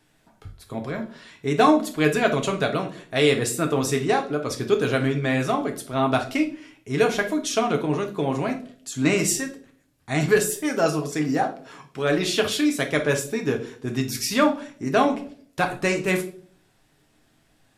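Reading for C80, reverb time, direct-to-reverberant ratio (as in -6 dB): 17.5 dB, 0.50 s, 3.0 dB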